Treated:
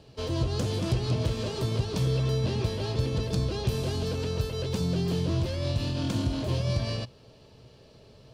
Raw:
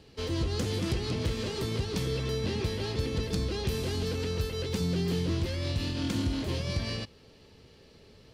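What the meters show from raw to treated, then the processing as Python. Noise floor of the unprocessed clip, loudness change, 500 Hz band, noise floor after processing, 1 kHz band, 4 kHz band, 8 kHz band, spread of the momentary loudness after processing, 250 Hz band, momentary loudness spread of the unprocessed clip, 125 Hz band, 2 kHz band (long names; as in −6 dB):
−56 dBFS, +2.5 dB, +1.5 dB, −55 dBFS, +3.0 dB, 0.0 dB, 0.0 dB, 3 LU, +1.0 dB, 3 LU, +4.5 dB, −2.0 dB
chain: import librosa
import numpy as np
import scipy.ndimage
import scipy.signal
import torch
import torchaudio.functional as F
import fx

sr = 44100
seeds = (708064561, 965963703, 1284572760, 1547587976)

y = fx.graphic_eq_31(x, sr, hz=(125, 630, 1000, 2000, 12500), db=(10, 9, 4, -6, -3))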